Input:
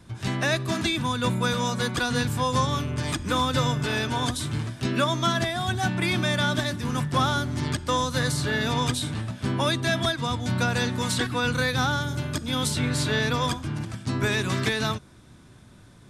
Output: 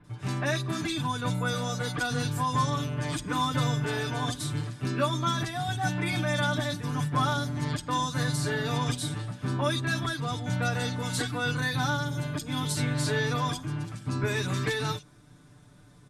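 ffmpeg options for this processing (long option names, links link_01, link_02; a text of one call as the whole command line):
ffmpeg -i in.wav -filter_complex "[0:a]aecho=1:1:6.8:0.82,acrossover=split=2800[link_01][link_02];[link_02]adelay=40[link_03];[link_01][link_03]amix=inputs=2:normalize=0,volume=-6dB" out.wav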